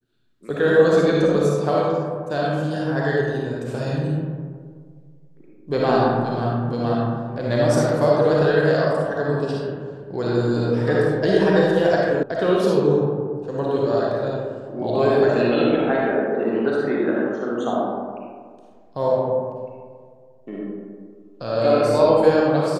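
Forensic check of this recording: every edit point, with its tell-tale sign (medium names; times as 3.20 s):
12.23 s: sound stops dead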